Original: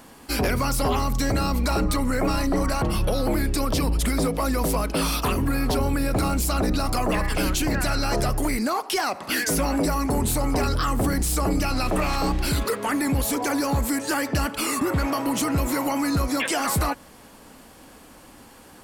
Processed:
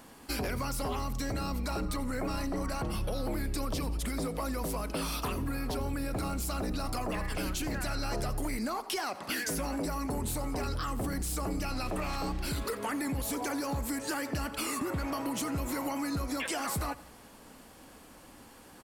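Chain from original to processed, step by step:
downward compressor, threshold −25 dBFS, peak gain reduction 6 dB
on a send: repeating echo 86 ms, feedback 54%, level −19 dB
on the sum: level −5.5 dB

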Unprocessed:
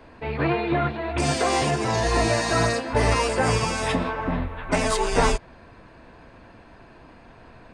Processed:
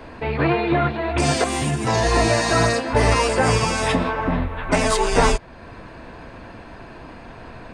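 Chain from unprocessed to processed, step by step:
0:01.44–0:01.87: drawn EQ curve 270 Hz 0 dB, 460 Hz −11 dB, 3,500 Hz −4 dB, 4,900 Hz −10 dB, 10,000 Hz +3 dB
in parallel at +1 dB: downward compressor, threshold −38 dBFS, peak gain reduction 21 dB
on the sum: level +2.5 dB

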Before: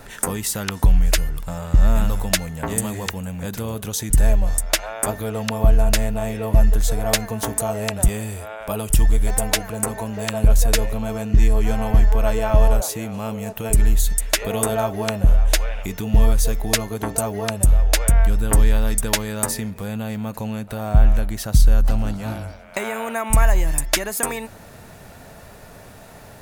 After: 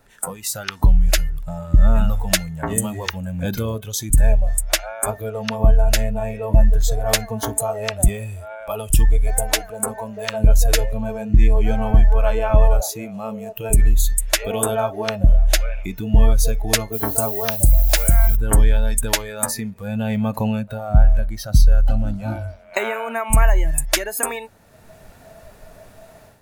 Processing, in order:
automatic gain control gain up to 10 dB
0:16.92–0:18.35: background noise violet −24 dBFS
noise reduction from a noise print of the clip's start 13 dB
level −2 dB

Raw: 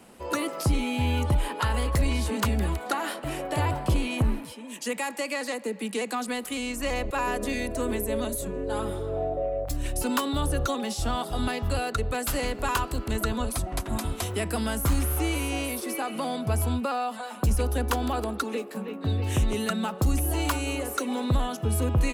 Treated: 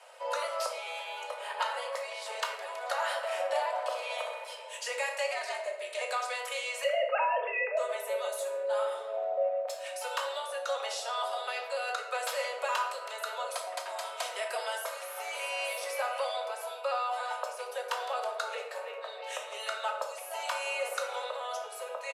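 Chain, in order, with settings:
0:06.84–0:07.77: three sine waves on the formant tracks
downward compressor, threshold −28 dBFS, peak gain reduction 9 dB
0:05.26–0:06.01: ring modulation 150 Hz
Butterworth high-pass 460 Hz 96 dB per octave
high-frequency loss of the air 53 metres
comb filter 3.2 ms, depth 41%
0:03.71–0:04.53: flutter between parallel walls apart 11.2 metres, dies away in 0.66 s
rectangular room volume 260 cubic metres, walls mixed, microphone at 0.96 metres

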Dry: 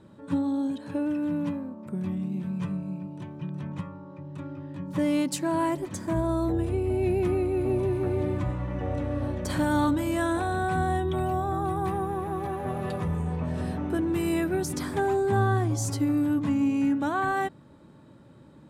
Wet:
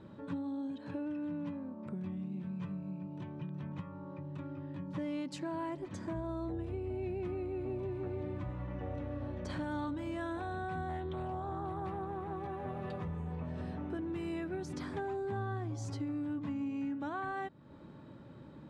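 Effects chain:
low-pass filter 4,500 Hz 12 dB per octave
downward compressor 2.5 to 1, threshold −42 dBFS, peak gain reduction 14.5 dB
0:10.89–0:12.36: highs frequency-modulated by the lows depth 0.17 ms

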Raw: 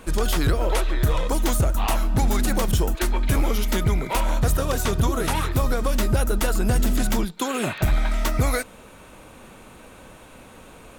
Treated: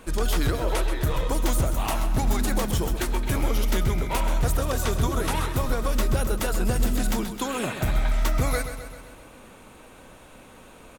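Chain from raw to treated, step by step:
mains-hum notches 50/100/150/200 Hz
repeating echo 130 ms, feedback 58%, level −10 dB
level −3 dB

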